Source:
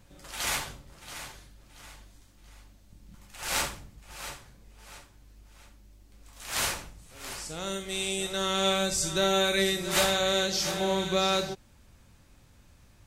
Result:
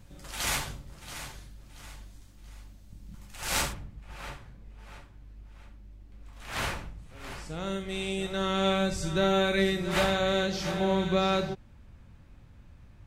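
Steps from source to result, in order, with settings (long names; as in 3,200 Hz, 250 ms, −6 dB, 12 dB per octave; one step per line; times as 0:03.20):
bass and treble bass +6 dB, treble 0 dB, from 0:03.72 treble −13 dB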